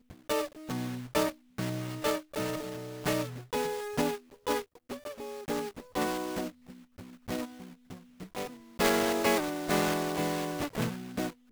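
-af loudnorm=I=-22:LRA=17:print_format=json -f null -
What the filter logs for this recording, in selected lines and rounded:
"input_i" : "-31.9",
"input_tp" : "-12.6",
"input_lra" : "5.4",
"input_thresh" : "-42.4",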